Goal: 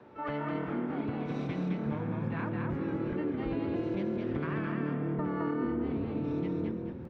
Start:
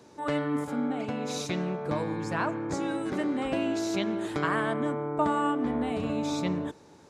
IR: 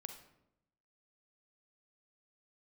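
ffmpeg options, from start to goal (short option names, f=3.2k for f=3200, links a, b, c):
-filter_complex "[0:a]lowpass=f=2.3k:w=0.5412,lowpass=f=2.3k:w=1.3066,aemphasis=mode=production:type=cd,bandreject=f=88.24:t=h:w=4,bandreject=f=176.48:t=h:w=4,bandreject=f=264.72:t=h:w=4,asubboost=boost=10.5:cutoff=190,acrossover=split=250|1400[a][b][c];[a]alimiter=limit=-22.5dB:level=0:latency=1:release=155[d];[d][b][c]amix=inputs=3:normalize=0,acompressor=threshold=-34dB:ratio=4,asplit=2[e][f];[f]asetrate=66075,aresample=44100,atempo=0.66742,volume=-9dB[g];[e][g]amix=inputs=2:normalize=0,asplit=5[h][i][j][k][l];[i]adelay=213,afreqshift=39,volume=-3dB[m];[j]adelay=426,afreqshift=78,volume=-13.2dB[n];[k]adelay=639,afreqshift=117,volume=-23.3dB[o];[l]adelay=852,afreqshift=156,volume=-33.5dB[p];[h][m][n][o][p]amix=inputs=5:normalize=0"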